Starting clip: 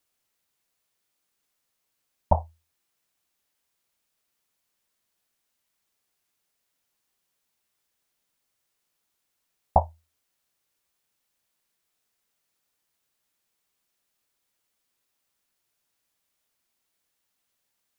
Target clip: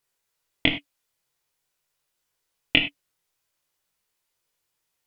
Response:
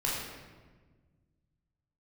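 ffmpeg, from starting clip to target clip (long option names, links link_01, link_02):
-filter_complex "[0:a]equalizer=frequency=67:width=7.5:gain=-7,asetrate=156555,aresample=44100,flanger=delay=20:depth=4.2:speed=0.48,asplit=2[link_01][link_02];[1:a]atrim=start_sample=2205,afade=type=out:start_time=0.15:duration=0.01,atrim=end_sample=7056[link_03];[link_02][link_03]afir=irnorm=-1:irlink=0,volume=-8dB[link_04];[link_01][link_04]amix=inputs=2:normalize=0,volume=5.5dB"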